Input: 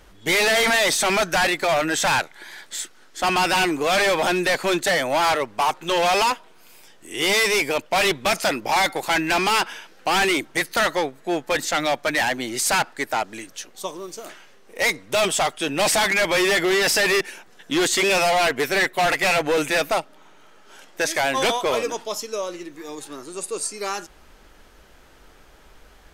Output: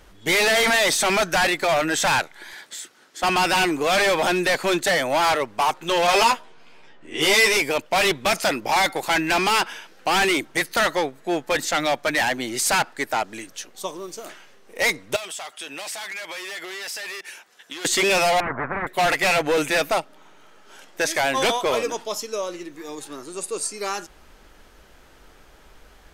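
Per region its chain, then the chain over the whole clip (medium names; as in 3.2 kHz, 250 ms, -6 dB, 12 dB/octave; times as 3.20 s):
2.53–3.23 s: high-pass 140 Hz + compression 2.5:1, threshold -33 dBFS
6.07–7.57 s: level-controlled noise filter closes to 2.3 kHz, open at -21.5 dBFS + doubling 13 ms -2 dB
15.16–17.85 s: high-pass 1.1 kHz 6 dB/octave + compression 5:1, threshold -31 dBFS
18.40–18.87 s: Chebyshev low-pass 1.3 kHz, order 5 + spectrum-flattening compressor 10:1
whole clip: none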